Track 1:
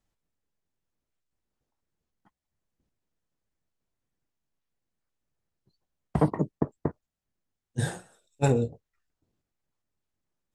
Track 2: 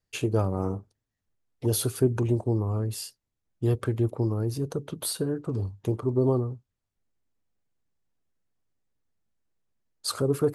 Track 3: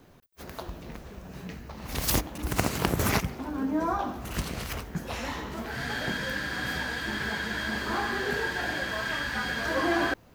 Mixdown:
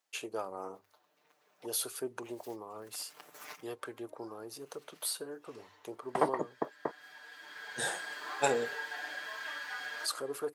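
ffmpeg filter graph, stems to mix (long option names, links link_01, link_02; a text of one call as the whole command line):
ffmpeg -i stem1.wav -i stem2.wav -i stem3.wav -filter_complex "[0:a]volume=2.5dB[link_01];[1:a]bandreject=frequency=50:width_type=h:width=6,bandreject=frequency=100:width_type=h:width=6,volume=-4.5dB,asplit=2[link_02][link_03];[2:a]aecho=1:1:6.7:0.81,adelay=350,volume=-12dB[link_04];[link_03]apad=whole_len=471735[link_05];[link_04][link_05]sidechaincompress=threshold=-46dB:ratio=6:attack=16:release=1050[link_06];[link_01][link_02][link_06]amix=inputs=3:normalize=0,highpass=640" out.wav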